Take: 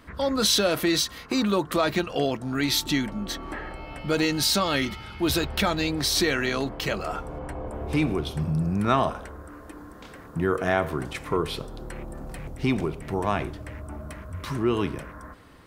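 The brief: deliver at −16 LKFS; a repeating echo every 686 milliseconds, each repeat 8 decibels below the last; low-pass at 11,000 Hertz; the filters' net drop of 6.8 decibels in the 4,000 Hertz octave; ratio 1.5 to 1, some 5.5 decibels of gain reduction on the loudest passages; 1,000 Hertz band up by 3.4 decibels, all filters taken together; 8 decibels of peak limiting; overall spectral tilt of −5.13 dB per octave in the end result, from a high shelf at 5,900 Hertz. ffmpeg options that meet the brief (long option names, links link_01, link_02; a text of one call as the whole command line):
ffmpeg -i in.wav -af "lowpass=11000,equalizer=frequency=1000:width_type=o:gain=5,equalizer=frequency=4000:width_type=o:gain=-5.5,highshelf=frequency=5900:gain=-7.5,acompressor=threshold=-31dB:ratio=1.5,alimiter=limit=-19.5dB:level=0:latency=1,aecho=1:1:686|1372|2058|2744|3430:0.398|0.159|0.0637|0.0255|0.0102,volume=15.5dB" out.wav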